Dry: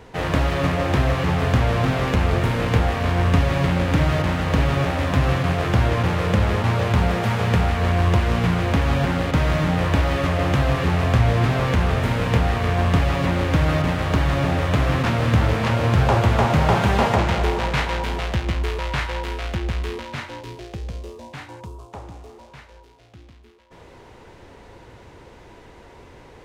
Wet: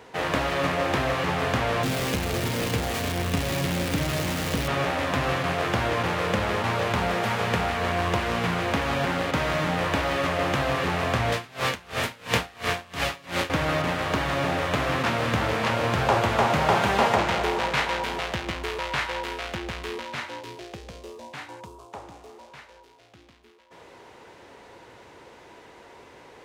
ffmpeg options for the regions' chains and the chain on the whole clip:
ffmpeg -i in.wav -filter_complex "[0:a]asettb=1/sr,asplit=3[link_01][link_02][link_03];[link_01]atrim=end=1.834[link_04];[link_02]atrim=start=1.83:end=4.68,asetpts=PTS-STARTPTS,afade=type=in:duration=0.004:curve=qsin,afade=type=out:start_time=2.846:duration=0.004:curve=qsin,aeval=exprs='val(0)+0.5*0.0891*sgn(val(0))':channel_layout=same,equalizer=frequency=1100:width=0.53:gain=-9.5[link_05];[link_03]atrim=start=4.676[link_06];[link_04][link_05]acrossfade=duration=0.004:curve1=hsin:curve2=qsin[link_07];[link_07][link_06]acrossfade=duration=0.004:curve1=qsin:curve2=hsin,asettb=1/sr,asplit=3[link_08][link_09][link_10];[link_08]atrim=end=11.324[link_11];[link_09]atrim=start=11.32:end=13.5,asetpts=PTS-STARTPTS,afade=type=in:duration=0.004:curve=qsin,afade=type=out:start_time=2.176:duration=0.004:curve=qsin,highshelf=frequency=2100:gain=10.5,aeval=exprs='val(0)*pow(10,-27*(0.5-0.5*cos(2*PI*2.9*n/s))/20)':channel_layout=same[link_12];[link_10]atrim=start=13.496[link_13];[link_11][link_12]acrossfade=duration=0.004:curve1=hsin:curve2=qsin[link_14];[link_14][link_13]acrossfade=duration=0.004:curve1=qsin:curve2=hsin,highpass=frequency=100:poles=1,lowshelf=frequency=220:gain=-11" out.wav

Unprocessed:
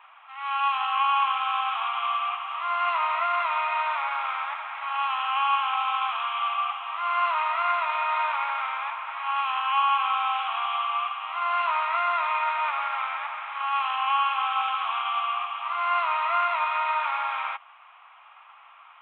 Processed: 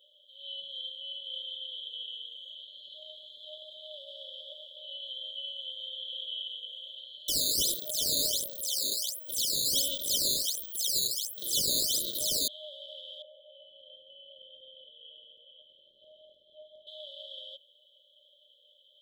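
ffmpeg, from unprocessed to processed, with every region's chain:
ffmpeg -i in.wav -filter_complex "[0:a]asettb=1/sr,asplit=3[link_01][link_02][link_03];[link_01]atrim=end=0.624[link_04];[link_02]atrim=start=0.62:end=4.07,asetpts=PTS-STARTPTS,afade=type=in:duration=0.004:curve=qsin,afade=type=out:start_time=3.446:duration=0.004:curve=qsin,aeval=exprs='val(0)+0.0398*sin(2*PI*1300*n/s)':channel_layout=same,bandreject=frequency=50:width_type=h:width=6,bandreject=frequency=100:width_type=h:width=6,bandreject=frequency=150:width_type=h:width=6,bandreject=frequency=200:width_type=h:width=6[link_05];[link_03]atrim=start=4.066[link_06];[link_04][link_05]acrossfade=duration=0.004:curve1=hsin:curve2=qsin[link_07];[link_07][link_06]acrossfade=duration=0.004:curve1=qsin:curve2=hsin,asettb=1/sr,asplit=3[link_08][link_09][link_10];[link_08]atrim=end=7.284[link_11];[link_09]atrim=start=7.28:end=12.48,asetpts=PTS-STARTPTS,afade=type=in:duration=0.004:curve=qsin,afade=type=out:start_time=5.196:duration=0.004:curve=qsin,highshelf=frequency=2200:width_type=q:width=3:gain=-11,acrusher=samples=9:mix=1:aa=0.000001:lfo=1:lforange=14.4:lforate=1.4,volume=18dB,asoftclip=hard,volume=-18dB[link_12];[link_10]atrim=start=12.476[link_13];[link_11][link_12]acrossfade=duration=0.004:curve1=hsin:curve2=qsin[link_14];[link_14][link_13]acrossfade=duration=0.004:curve1=qsin:curve2=hsin,asettb=1/sr,asplit=3[link_15][link_16][link_17];[link_15]atrim=end=13.224[link_18];[link_16]atrim=start=13.22:end=16.87,asetpts=PTS-STARTPTS,afade=type=in:duration=0.004:curve=qsin,afade=type=out:start_time=3.646:duration=0.004:curve=qsin,lowpass=frequency=2200:width=0.5412,lowpass=frequency=2200:width=1.3066,adynamicequalizer=threshold=0.0178:dfrequency=1400:dqfactor=0.86:tfrequency=1400:tqfactor=0.86:attack=5:release=100:ratio=0.375:range=3:mode=boostabove:tftype=bell,asplit=2[link_19][link_20];[link_20]adelay=15,volume=-13dB[link_21];[link_19][link_21]amix=inputs=2:normalize=0,atrim=end_sample=160965[link_22];[link_17]atrim=start=16.866[link_23];[link_18][link_22]acrossfade=duration=0.004:curve1=hsin:curve2=qsin[link_24];[link_24][link_23]acrossfade=duration=0.004:curve1=qsin:curve2=hsin,alimiter=limit=-22.5dB:level=0:latency=1:release=77,afftfilt=real='re*(1-between(b*sr/4096,620,3000))':imag='im*(1-between(b*sr/4096,620,3000))':win_size=4096:overlap=0.75,volume=6.5dB" out.wav

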